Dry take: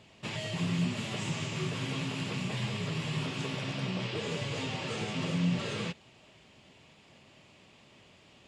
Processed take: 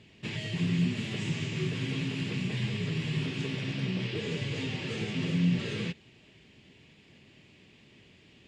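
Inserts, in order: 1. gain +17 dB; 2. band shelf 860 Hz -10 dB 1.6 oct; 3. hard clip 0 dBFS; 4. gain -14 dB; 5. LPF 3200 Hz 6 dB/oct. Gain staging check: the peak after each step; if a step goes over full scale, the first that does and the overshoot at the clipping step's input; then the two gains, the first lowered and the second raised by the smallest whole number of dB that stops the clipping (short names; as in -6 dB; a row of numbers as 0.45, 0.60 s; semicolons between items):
-2.5, -3.0, -3.0, -17.0, -17.0 dBFS; no overload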